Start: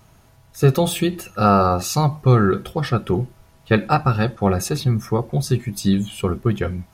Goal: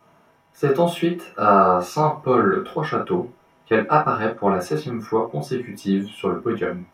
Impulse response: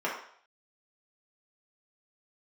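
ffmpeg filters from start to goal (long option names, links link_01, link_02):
-filter_complex "[0:a]acrossover=split=1600[link_01][link_02];[link_01]crystalizer=i=4:c=0[link_03];[link_03][link_02]amix=inputs=2:normalize=0,asettb=1/sr,asplit=3[link_04][link_05][link_06];[link_04]atrim=end=1.934[link_07];[link_05]atrim=start=1.93:end=2.75,asetpts=PTS-STARTPTS,afade=type=in:duration=0.004:curve=qsin,afade=type=out:start_time=0.816:duration=0.004:curve=qsin,asplit=2[link_08][link_09];[link_09]adelay=29,volume=-8dB[link_10];[link_08][link_10]amix=inputs=2:normalize=0,atrim=end_sample=36162[link_11];[link_06]atrim=start=2.746[link_12];[link_07][link_11]acrossfade=duration=0.004:curve1=hsin:curve2=qsin[link_13];[link_13][link_12]acrossfade=duration=0.004:curve1=qsin:curve2=hsin[link_14];[1:a]atrim=start_sample=2205,atrim=end_sample=3087[link_15];[link_14][link_15]afir=irnorm=-1:irlink=0,volume=-8.5dB"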